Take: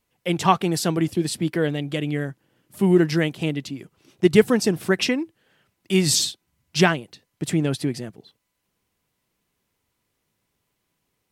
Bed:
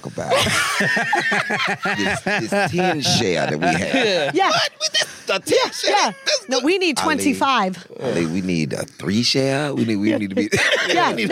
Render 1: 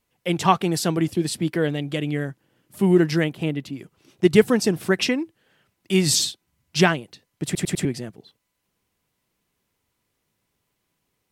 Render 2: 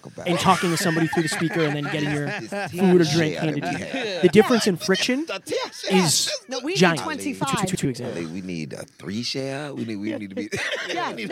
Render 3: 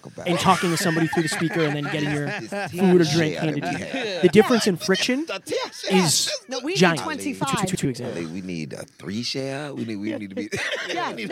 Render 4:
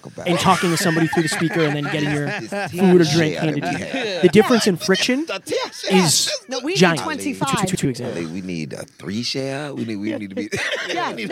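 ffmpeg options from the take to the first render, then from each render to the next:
-filter_complex "[0:a]asettb=1/sr,asplit=3[a][b][c];[a]atrim=end=3.244[d];[b]atrim=start=3.24:end=3.73,asetpts=PTS-STARTPTS,afade=t=in:d=0.004:c=qsin,afade=t=out:st=0.486:d=0.004:c=qsin,equalizer=f=6k:t=o:w=1.7:g=-7.5[e];[c]atrim=start=3.726[f];[d][e]acrossfade=d=0.004:c1=hsin:c2=qsin[g];[g][f]acrossfade=d=0.004:c1=qsin:c2=hsin,asplit=5[h][i][j][k][l];[h]atrim=end=7.552[m];[i]atrim=start=7.448:end=7.552[n];[j]atrim=start=7.448:end=7.552[o];[k]atrim=start=7.448:end=7.552[p];[l]atrim=start=7.848[q];[m][n]acrossfade=d=0.004:c1=hsin:c2=hsin[r];[r][o]acrossfade=d=0.004:c1=hsin:c2=hsin[s];[s][p]acrossfade=d=0.004:c1=hsin:c2=hsin[t];[t][q]acrossfade=d=0.004:c1=hsin:c2=hsin"
-filter_complex "[1:a]volume=-9.5dB[a];[0:a][a]amix=inputs=2:normalize=0"
-af anull
-af "volume=3.5dB,alimiter=limit=-1dB:level=0:latency=1"

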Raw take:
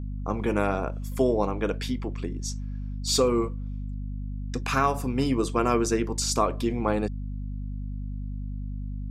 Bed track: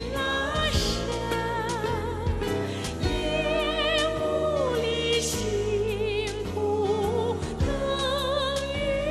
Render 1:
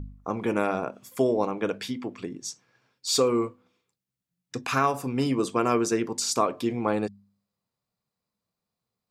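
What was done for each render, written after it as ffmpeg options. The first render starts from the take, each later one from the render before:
-af "bandreject=f=50:t=h:w=4,bandreject=f=100:t=h:w=4,bandreject=f=150:t=h:w=4,bandreject=f=200:t=h:w=4,bandreject=f=250:t=h:w=4"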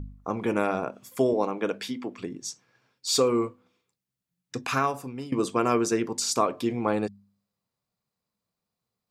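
-filter_complex "[0:a]asettb=1/sr,asplit=3[a][b][c];[a]atrim=end=1.334[d];[b]atrim=start=1.33:end=2.18,asetpts=PTS-STARTPTS,afade=t=in:d=0.004:c=qsin,afade=t=out:st=0.846:d=0.004:c=qsin,highpass=170[e];[c]atrim=start=2.176[f];[d][e]acrossfade=d=0.004:c1=hsin:c2=qsin[g];[g][f]acrossfade=d=0.004:c1=qsin:c2=hsin,asplit=2[h][i];[h]atrim=end=5.32,asetpts=PTS-STARTPTS,afade=t=out:st=4.68:d=0.64:silence=0.141254[j];[i]atrim=start=5.32,asetpts=PTS-STARTPTS,afade=t=in:d=0.004:c=hsin:silence=0.141254[k];[j][k]concat=n=2:v=0:a=1"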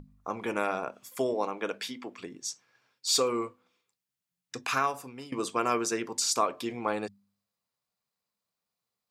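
-af "lowshelf=f=440:g=-11.5,bandreject=f=50:t=h:w=6,bandreject=f=100:t=h:w=6"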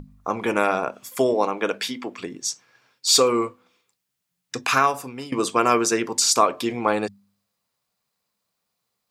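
-af "volume=9dB"

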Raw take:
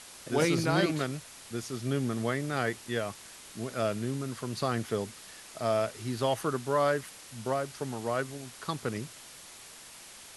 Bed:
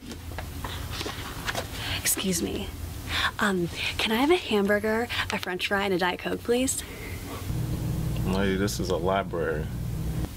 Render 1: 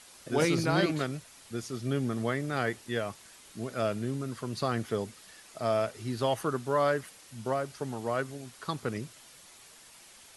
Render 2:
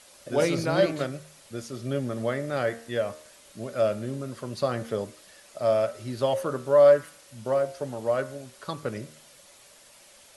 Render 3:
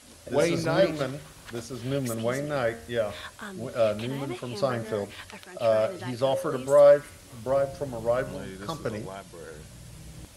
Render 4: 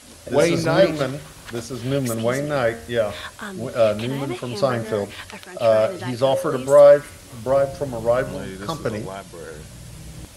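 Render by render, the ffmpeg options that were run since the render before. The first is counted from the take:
-af "afftdn=nr=6:nf=-49"
-af "equalizer=f=570:t=o:w=0.23:g=13.5,bandreject=f=76.94:t=h:w=4,bandreject=f=153.88:t=h:w=4,bandreject=f=230.82:t=h:w=4,bandreject=f=307.76:t=h:w=4,bandreject=f=384.7:t=h:w=4,bandreject=f=461.64:t=h:w=4,bandreject=f=538.58:t=h:w=4,bandreject=f=615.52:t=h:w=4,bandreject=f=692.46:t=h:w=4,bandreject=f=769.4:t=h:w=4,bandreject=f=846.34:t=h:w=4,bandreject=f=923.28:t=h:w=4,bandreject=f=1.00022k:t=h:w=4,bandreject=f=1.07716k:t=h:w=4,bandreject=f=1.1541k:t=h:w=4,bandreject=f=1.23104k:t=h:w=4,bandreject=f=1.30798k:t=h:w=4,bandreject=f=1.38492k:t=h:w=4,bandreject=f=1.46186k:t=h:w=4,bandreject=f=1.5388k:t=h:w=4,bandreject=f=1.61574k:t=h:w=4,bandreject=f=1.69268k:t=h:w=4,bandreject=f=1.76962k:t=h:w=4,bandreject=f=1.84656k:t=h:w=4,bandreject=f=1.9235k:t=h:w=4,bandreject=f=2.00044k:t=h:w=4,bandreject=f=2.07738k:t=h:w=4,bandreject=f=2.15432k:t=h:w=4,bandreject=f=2.23126k:t=h:w=4,bandreject=f=2.3082k:t=h:w=4"
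-filter_complex "[1:a]volume=-15dB[a];[0:a][a]amix=inputs=2:normalize=0"
-af "volume=6.5dB,alimiter=limit=-3dB:level=0:latency=1"

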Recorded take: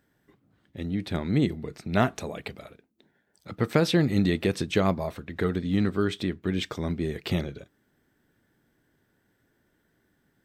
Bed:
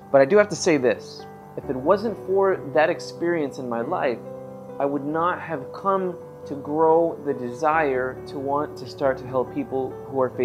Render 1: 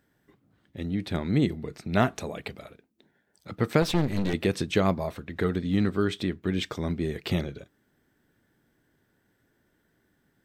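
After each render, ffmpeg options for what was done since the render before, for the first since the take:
-filter_complex "[0:a]asettb=1/sr,asplit=3[a][b][c];[a]atrim=end=3.824[d];[b]atrim=start=3.82:end=4.34,asetpts=PTS-STARTPTS,afade=t=in:d=0.004:c=qsin,afade=t=out:st=0.516:d=0.004:c=qsin,aeval=exprs='clip(val(0),-1,0.0224)':c=same[e];[c]atrim=start=4.336[f];[d][e]acrossfade=d=0.004:c1=hsin:c2=qsin[g];[g][f]acrossfade=d=0.004:c1=qsin:c2=hsin"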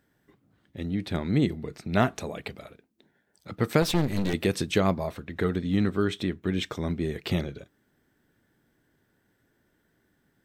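-filter_complex "[0:a]asettb=1/sr,asplit=3[a][b][c];[a]atrim=end=3.614[d];[b]atrim=start=3.61:end=4.78,asetpts=PTS-STARTPTS,afade=t=in:d=0.004:c=qsin,afade=t=out:st=1.166:d=0.004:c=qsin,highshelf=f=6.8k:g=7[e];[c]atrim=start=4.776[f];[d][e]acrossfade=d=0.004:c1=hsin:c2=qsin[g];[g][f]acrossfade=d=0.004:c1=qsin:c2=hsin,asettb=1/sr,asplit=3[h][i][j];[h]atrim=end=5.344[k];[i]atrim=start=5.34:end=7.24,asetpts=PTS-STARTPTS,afade=t=in:d=0.004:c=qsin,afade=t=out:st=1.896:d=0.004:c=qsin,bandreject=f=4.7k:w=12[l];[j]atrim=start=7.236[m];[k][l]acrossfade=d=0.004:c1=hsin:c2=qsin[n];[n][m]acrossfade=d=0.004:c1=qsin:c2=hsin"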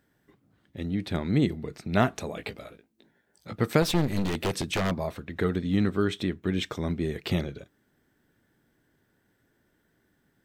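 -filter_complex "[0:a]asettb=1/sr,asplit=3[a][b][c];[a]atrim=end=2.354[d];[b]atrim=start=2.35:end=3.61,asetpts=PTS-STARTPTS,afade=t=in:d=0.004:c=qsin,afade=t=out:st=1.256:d=0.004:c=qsin,asplit=2[e][f];[f]adelay=18,volume=-5.5dB[g];[e][g]amix=inputs=2:normalize=0,atrim=end_sample=55566[h];[c]atrim=start=3.606[i];[d][h]acrossfade=d=0.004:c1=hsin:c2=qsin[j];[j][i]acrossfade=d=0.004:c1=qsin:c2=hsin,asettb=1/sr,asplit=3[k][l][m];[k]atrim=end=4.244[n];[l]atrim=start=4.24:end=4.91,asetpts=PTS-STARTPTS,afade=t=in:d=0.004:c=qsin,afade=t=out:st=0.666:d=0.004:c=qsin,aeval=exprs='0.0891*(abs(mod(val(0)/0.0891+3,4)-2)-1)':c=same[o];[m]atrim=start=4.906[p];[n][o]acrossfade=d=0.004:c1=hsin:c2=qsin[q];[q][p]acrossfade=d=0.004:c1=qsin:c2=hsin"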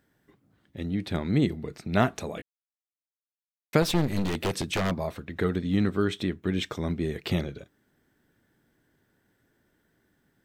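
-filter_complex "[0:a]asplit=3[a][b][c];[a]atrim=end=2.42,asetpts=PTS-STARTPTS,afade=t=out:st=2.416:d=0.004:c=hsin[d];[b]atrim=start=2.42:end=3.73,asetpts=PTS-STARTPTS,volume=0[e];[c]atrim=start=3.73,asetpts=PTS-STARTPTS,afade=t=in:d=0.004:c=hsin[f];[d][e][f]concat=n=3:v=0:a=1"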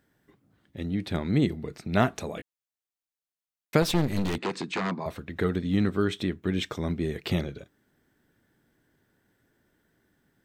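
-filter_complex "[0:a]asettb=1/sr,asplit=3[a][b][c];[a]atrim=end=4.384[d];[b]atrim=start=4.38:end=5.06,asetpts=PTS-STARTPTS,afade=t=in:d=0.004:c=qsin,afade=t=out:st=0.676:d=0.004:c=qsin,highpass=f=170:w=0.5412,highpass=f=170:w=1.3066,equalizer=f=590:t=q:w=4:g=-10,equalizer=f=1k:t=q:w=4:g=4,equalizer=f=3.2k:t=q:w=4:g=-6,equalizer=f=5.7k:t=q:w=4:g=-9,lowpass=f=6.7k:w=0.5412,lowpass=f=6.7k:w=1.3066[e];[c]atrim=start=5.056[f];[d][e]acrossfade=d=0.004:c1=hsin:c2=qsin[g];[g][f]acrossfade=d=0.004:c1=qsin:c2=hsin"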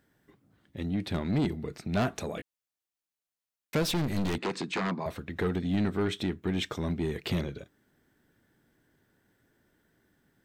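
-af "asoftclip=type=tanh:threshold=-21.5dB"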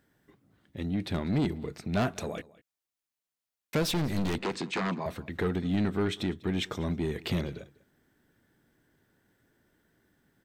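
-af "aecho=1:1:197:0.0794"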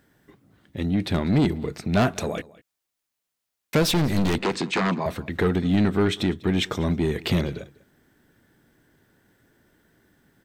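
-af "volume=7.5dB"

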